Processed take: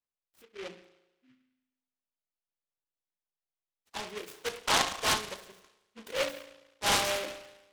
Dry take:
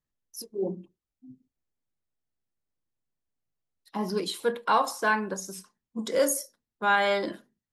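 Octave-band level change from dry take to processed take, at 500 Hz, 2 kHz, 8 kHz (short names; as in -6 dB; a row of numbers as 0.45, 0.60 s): -8.0, -4.5, 0.0 dB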